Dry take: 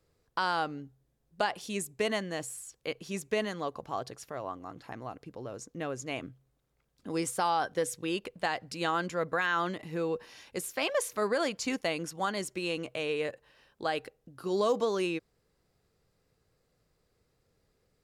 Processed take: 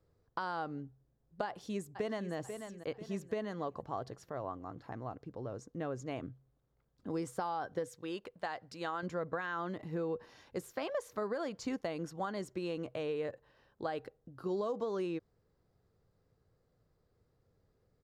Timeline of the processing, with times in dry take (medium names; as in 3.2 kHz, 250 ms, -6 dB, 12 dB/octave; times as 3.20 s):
1.46–2.34 s: echo throw 490 ms, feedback 40%, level -12 dB
7.88–9.03 s: bass shelf 430 Hz -10 dB
whole clip: fifteen-band graphic EQ 100 Hz +5 dB, 2.5 kHz -6 dB, 10 kHz -7 dB; compression, threshold -31 dBFS; treble shelf 2.5 kHz -9.5 dB; trim -1 dB